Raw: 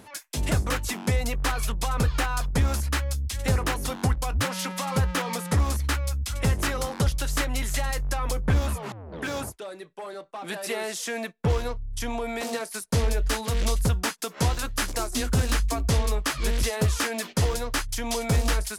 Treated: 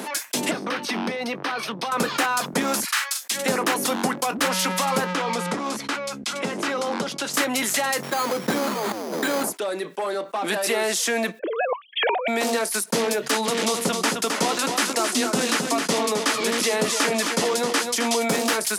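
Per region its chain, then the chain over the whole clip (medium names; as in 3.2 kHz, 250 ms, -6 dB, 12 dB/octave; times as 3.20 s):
0.51–1.92 s: Savitzky-Golay filter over 15 samples + compression, threshold -31 dBFS
2.84–3.31 s: high-pass 1.1 kHz 24 dB/octave + doubling 42 ms -7 dB
5.13–7.34 s: band-stop 1.8 kHz, Q 15 + compression 3:1, threshold -30 dBFS + distance through air 64 m
8.03–9.44 s: CVSD coder 16 kbps + careless resampling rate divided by 8×, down filtered, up hold
11.39–12.28 s: formants replaced by sine waves + compressor with a negative ratio -30 dBFS, ratio -0.5
13.31–18.19 s: low-pass 11 kHz + band-stop 1.6 kHz, Q 22 + delay 263 ms -9 dB
whole clip: steep high-pass 200 Hz 36 dB/octave; level flattener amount 50%; trim +4.5 dB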